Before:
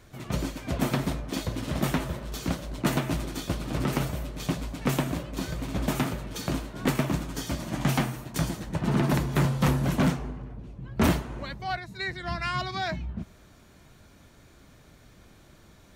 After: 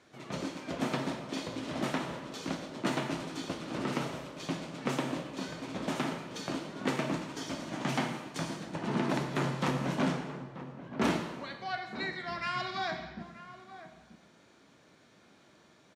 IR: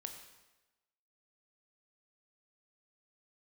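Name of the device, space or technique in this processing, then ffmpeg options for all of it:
supermarket ceiling speaker: -filter_complex "[0:a]highpass=220,lowpass=6600[s0];[1:a]atrim=start_sample=2205[s1];[s0][s1]afir=irnorm=-1:irlink=0,asplit=2[s2][s3];[s3]adelay=932.9,volume=0.224,highshelf=f=4000:g=-21[s4];[s2][s4]amix=inputs=2:normalize=0"

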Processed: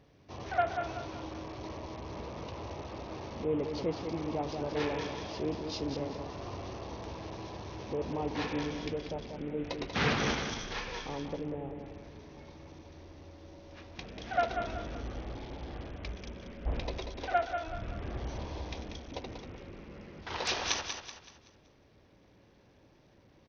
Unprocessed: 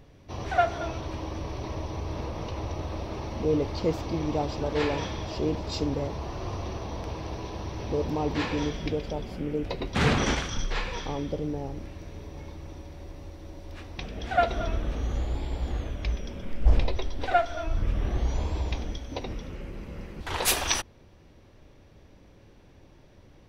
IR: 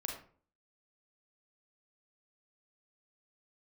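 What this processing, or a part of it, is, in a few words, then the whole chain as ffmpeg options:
Bluetooth headset: -filter_complex "[0:a]asplit=3[s0][s1][s2];[s0]afade=t=out:st=9.56:d=0.02[s3];[s1]equalizer=f=2200:w=0.53:g=3.5,afade=t=in:st=9.56:d=0.02,afade=t=out:st=10.14:d=0.02[s4];[s2]afade=t=in:st=10.14:d=0.02[s5];[s3][s4][s5]amix=inputs=3:normalize=0,highpass=f=120:p=1,aecho=1:1:189|378|567|756|945:0.447|0.174|0.0679|0.0265|0.0103,aresample=16000,aresample=44100,volume=0.501" -ar 48000 -c:a sbc -b:a 64k

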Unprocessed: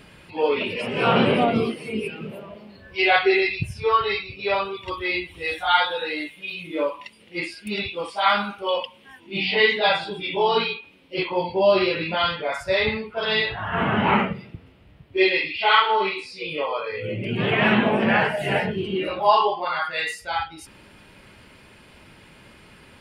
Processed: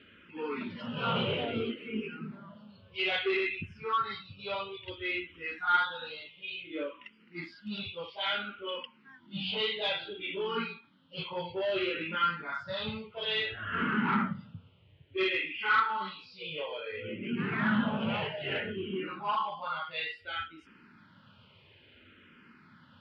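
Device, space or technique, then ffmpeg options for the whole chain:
barber-pole phaser into a guitar amplifier: -filter_complex "[0:a]asplit=2[s0][s1];[s1]afreqshift=-0.59[s2];[s0][s2]amix=inputs=2:normalize=1,asoftclip=type=tanh:threshold=0.178,highpass=95,equalizer=f=97:t=q:w=4:g=9,equalizer=f=160:t=q:w=4:g=4,equalizer=f=240:t=q:w=4:g=7,equalizer=f=730:t=q:w=4:g=-8,equalizer=f=1400:t=q:w=4:g=9,equalizer=f=3100:t=q:w=4:g=7,lowpass=f=4300:w=0.5412,lowpass=f=4300:w=1.3066,asettb=1/sr,asplit=3[s3][s4][s5];[s3]atrim=end=18.604[s6];[s4]atrim=start=18.6:end=19.91,asetpts=PTS-STARTPTS,afade=t=in:d=0.004:c=qsin,afade=t=out:st=1.306:d=0.004:c=qsin,acrossover=split=3600[s7][s8];[s8]acompressor=threshold=0.00251:ratio=4:attack=1:release=60[s9];[s7][s9]amix=inputs=2:normalize=0[s10];[s5]atrim=start=19.906[s11];[s6][s10]acrossfade=d=0.004:c1=hsin:c2=qsin[s12];[s12][s11]acrossfade=d=0.004:c1=qsin:c2=hsin,volume=0.355"

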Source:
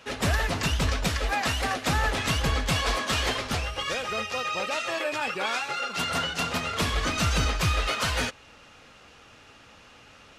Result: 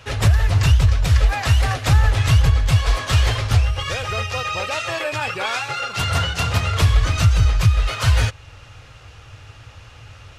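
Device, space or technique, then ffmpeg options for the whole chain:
car stereo with a boomy subwoofer: -af "lowshelf=f=150:t=q:w=3:g=11,alimiter=limit=0.282:level=0:latency=1:release=488,volume=1.78"

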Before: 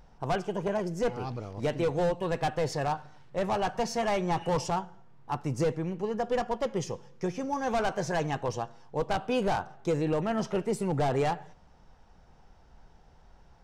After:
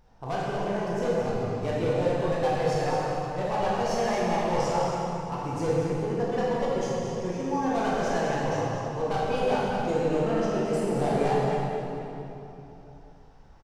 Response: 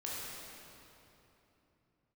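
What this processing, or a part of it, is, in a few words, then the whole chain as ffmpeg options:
cave: -filter_complex "[0:a]aecho=1:1:224:0.376[s0];[1:a]atrim=start_sample=2205[s1];[s0][s1]afir=irnorm=-1:irlink=0"

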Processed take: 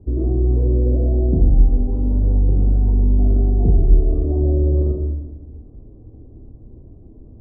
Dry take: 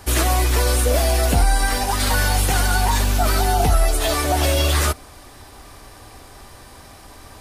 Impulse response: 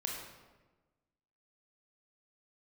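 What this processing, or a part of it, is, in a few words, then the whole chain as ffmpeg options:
next room: -filter_complex "[0:a]lowpass=f=370:w=0.5412,lowpass=f=370:w=1.3066[s0];[1:a]atrim=start_sample=2205[s1];[s0][s1]afir=irnorm=-1:irlink=0,volume=1.41"

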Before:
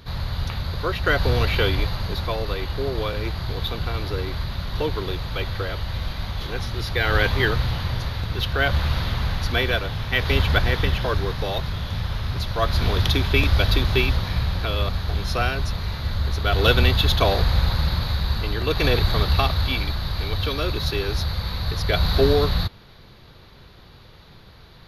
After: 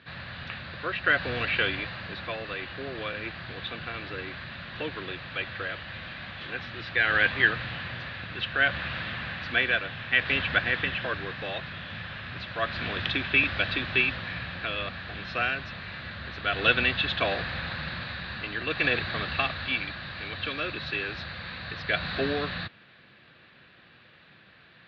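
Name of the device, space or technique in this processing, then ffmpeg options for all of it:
kitchen radio: -af "highpass=180,equalizer=f=420:t=q:w=4:g=-7,equalizer=f=910:t=q:w=4:g=-7,equalizer=f=1700:t=q:w=4:g=10,equalizer=f=2600:t=q:w=4:g=8,lowpass=f=3700:w=0.5412,lowpass=f=3700:w=1.3066,volume=0.531"

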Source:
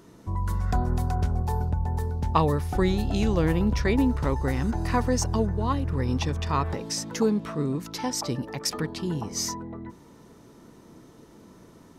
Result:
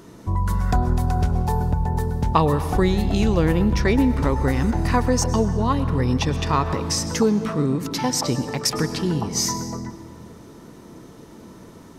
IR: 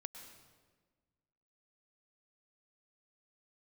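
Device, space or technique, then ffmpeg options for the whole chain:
compressed reverb return: -filter_complex "[0:a]asplit=2[s0][s1];[1:a]atrim=start_sample=2205[s2];[s1][s2]afir=irnorm=-1:irlink=0,acompressor=threshold=0.0355:ratio=6,volume=2.24[s3];[s0][s3]amix=inputs=2:normalize=0"

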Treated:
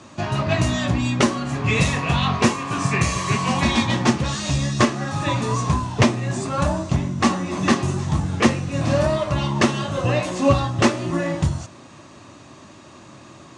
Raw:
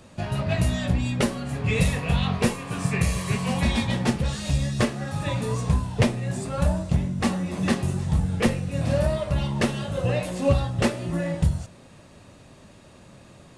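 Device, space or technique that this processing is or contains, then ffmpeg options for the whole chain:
car door speaker: -af "highpass=110,equalizer=f=180:t=q:w=4:g=-6,equalizer=f=320:t=q:w=4:g=6,equalizer=f=480:t=q:w=4:g=-7,equalizer=f=1100:t=q:w=4:g=7,equalizer=f=6200:t=q:w=4:g=5,lowpass=f=8000:w=0.5412,lowpass=f=8000:w=1.3066,volume=2"

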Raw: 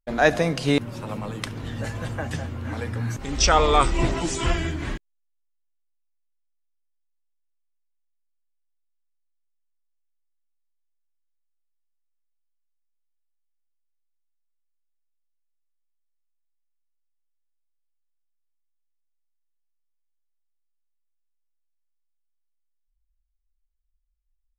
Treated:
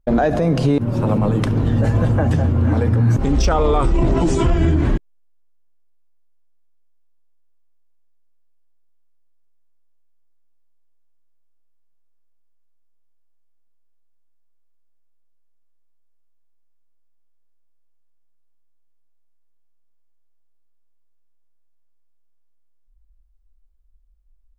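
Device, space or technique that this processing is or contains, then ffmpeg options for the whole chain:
mastering chain: -af "equalizer=f=2000:t=o:w=0.34:g=-2.5,acompressor=threshold=0.0355:ratio=1.5,asoftclip=type=tanh:threshold=0.224,tiltshelf=f=1200:g=8.5,alimiter=level_in=6.68:limit=0.891:release=50:level=0:latency=1,volume=0.422"

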